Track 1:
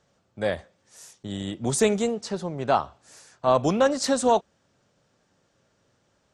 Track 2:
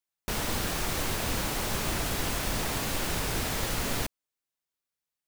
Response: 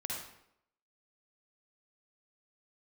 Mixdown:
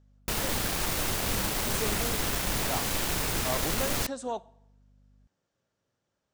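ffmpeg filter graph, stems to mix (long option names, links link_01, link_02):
-filter_complex "[0:a]volume=-14dB,asplit=2[link_01][link_02];[link_02]volume=-22dB[link_03];[1:a]acrusher=bits=4:mix=0:aa=0.000001,aeval=exprs='val(0)+0.00112*(sin(2*PI*50*n/s)+sin(2*PI*2*50*n/s)/2+sin(2*PI*3*50*n/s)/3+sin(2*PI*4*50*n/s)/4+sin(2*PI*5*50*n/s)/5)':channel_layout=same,volume=-0.5dB[link_04];[2:a]atrim=start_sample=2205[link_05];[link_03][link_05]afir=irnorm=-1:irlink=0[link_06];[link_01][link_04][link_06]amix=inputs=3:normalize=0"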